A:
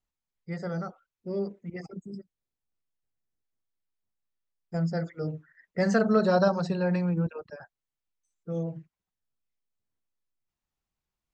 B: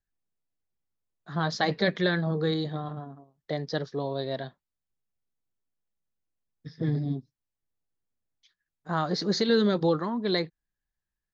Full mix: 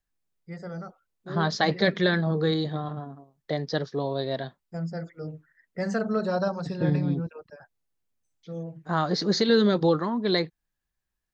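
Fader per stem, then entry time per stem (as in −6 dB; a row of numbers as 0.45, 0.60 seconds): −4.0, +2.5 decibels; 0.00, 0.00 seconds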